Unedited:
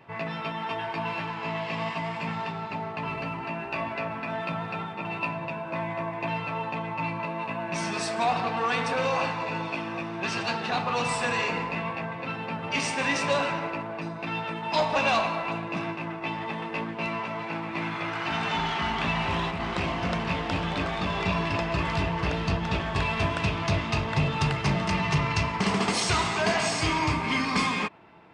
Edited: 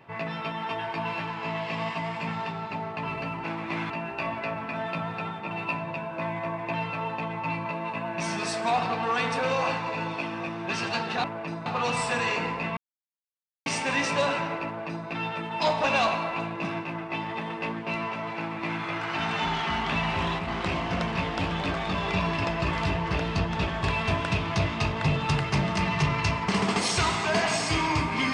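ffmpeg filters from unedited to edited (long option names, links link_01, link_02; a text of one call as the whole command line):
ffmpeg -i in.wav -filter_complex "[0:a]asplit=7[link_01][link_02][link_03][link_04][link_05][link_06][link_07];[link_01]atrim=end=3.442[link_08];[link_02]atrim=start=17.488:end=17.952[link_09];[link_03]atrim=start=3.438:end=10.782[link_10];[link_04]atrim=start=13.778:end=14.202[link_11];[link_05]atrim=start=10.778:end=11.89,asetpts=PTS-STARTPTS,afade=type=out:start_time=1.108:duration=0.004:curve=hsin[link_12];[link_06]atrim=start=11.89:end=12.78,asetpts=PTS-STARTPTS,volume=0[link_13];[link_07]atrim=start=12.78,asetpts=PTS-STARTPTS,afade=type=in:duration=0.004:curve=hsin[link_14];[link_08][link_09]acrossfade=duration=0.004:curve1=hsin:curve2=hsin[link_15];[link_15][link_10]acrossfade=duration=0.004:curve1=hsin:curve2=hsin[link_16];[link_16][link_11]acrossfade=duration=0.004:curve1=hsin:curve2=hsin[link_17];[link_12][link_13][link_14]concat=n=3:v=0:a=1[link_18];[link_17][link_18]acrossfade=duration=0.004:curve1=hsin:curve2=hsin" out.wav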